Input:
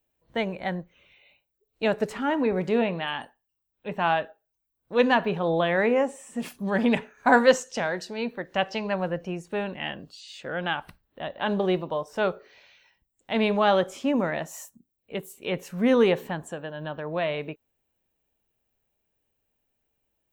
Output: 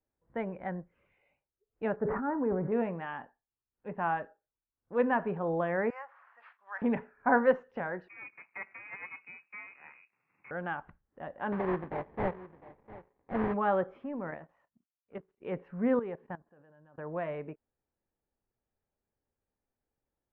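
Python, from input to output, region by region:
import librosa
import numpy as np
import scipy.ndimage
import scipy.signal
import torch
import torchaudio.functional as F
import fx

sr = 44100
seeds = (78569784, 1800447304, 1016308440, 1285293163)

y = fx.chain(x, sr, fx.lowpass(hz=1600.0, slope=24),
    fx.sustainer(db_per_s=37.0), at=(1.96, 2.72))
y = fx.chain(y, sr, fx.resample_bad(factor=6, down='none', up='hold'),
    fx.highpass(hz=1000.0, slope=24), at=(5.9, 6.82))
y = fx.chain(y, sr, fx.median_filter(points=41),
    fx.freq_invert(carrier_hz=2700),
    fx.highpass(hz=130.0, slope=24), at=(8.08, 10.51))
y = fx.chain(y, sr, fx.echo_single(ms=704, db=-17.0),
    fx.sample_hold(seeds[0], rate_hz=1400.0, jitter_pct=20), at=(11.52, 13.54))
y = fx.chain(y, sr, fx.law_mismatch(coded='A'),
    fx.level_steps(step_db=10), at=(14.04, 15.41))
y = fx.chain(y, sr, fx.level_steps(step_db=15),
    fx.upward_expand(threshold_db=-46.0, expansion=1.5), at=(15.99, 16.98))
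y = scipy.signal.sosfilt(scipy.signal.butter(4, 1800.0, 'lowpass', fs=sr, output='sos'), y)
y = fx.notch(y, sr, hz=640.0, q=16.0)
y = F.gain(torch.from_numpy(y), -6.5).numpy()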